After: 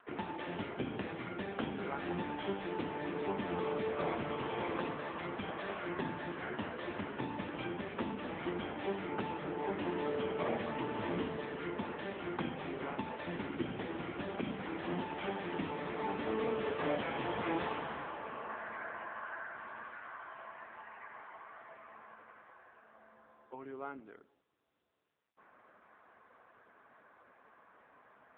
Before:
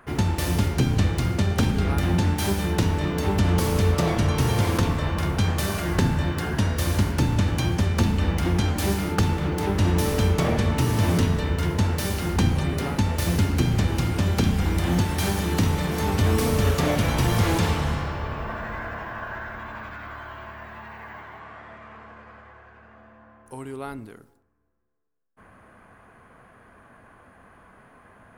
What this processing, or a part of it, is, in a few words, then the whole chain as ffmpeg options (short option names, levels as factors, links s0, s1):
telephone: -af "highpass=320,lowpass=3100,volume=0.473" -ar 8000 -c:a libopencore_amrnb -b:a 6700